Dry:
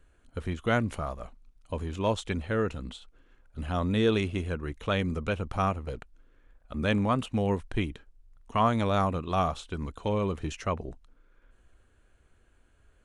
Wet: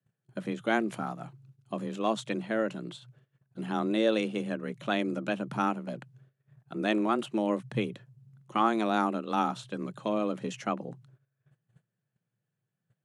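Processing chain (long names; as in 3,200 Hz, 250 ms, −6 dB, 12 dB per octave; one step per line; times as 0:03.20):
frequency shifter +110 Hz
noise gate −55 dBFS, range −21 dB
level −1.5 dB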